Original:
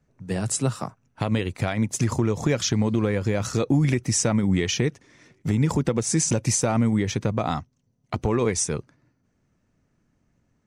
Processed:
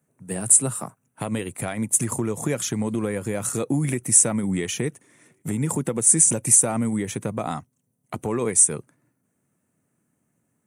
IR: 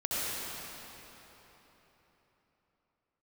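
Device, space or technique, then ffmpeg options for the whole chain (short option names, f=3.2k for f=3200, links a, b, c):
budget condenser microphone: -af "highpass=94,highpass=110,highshelf=f=7k:t=q:w=3:g=12.5,volume=-2dB"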